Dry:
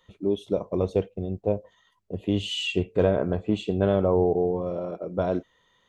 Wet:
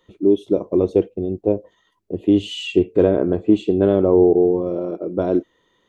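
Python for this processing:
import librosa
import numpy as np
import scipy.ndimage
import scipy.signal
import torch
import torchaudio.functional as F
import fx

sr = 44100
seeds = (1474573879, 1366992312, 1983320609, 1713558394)

y = fx.peak_eq(x, sr, hz=330.0, db=14.0, octaves=0.87)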